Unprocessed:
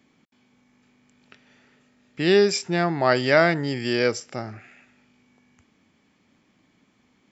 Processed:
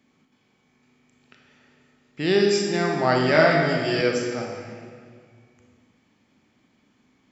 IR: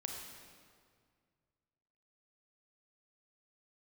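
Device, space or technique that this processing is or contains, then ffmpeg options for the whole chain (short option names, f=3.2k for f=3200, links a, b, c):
stairwell: -filter_complex "[1:a]atrim=start_sample=2205[a];[0:a][a]afir=irnorm=-1:irlink=0,asettb=1/sr,asplit=3[b][c][d];[b]atrim=end=3.334[e];[c]atrim=start=3.33:end=4.01,asetpts=PTS-STARTPTS,afade=t=in:d=0.004:c=qsin,afade=t=out:st=0.676:d=0.004:c=qsin,asplit=2[f][g];[g]adelay=19,volume=-2dB[h];[f][h]amix=inputs=2:normalize=0,atrim=end_sample=29988[i];[d]atrim=start=4.006[j];[e][i]acrossfade=d=0.004:c1=hsin:c2=qsin[k];[k][j]acrossfade=d=0.004:c1=qsin:c2=hsin"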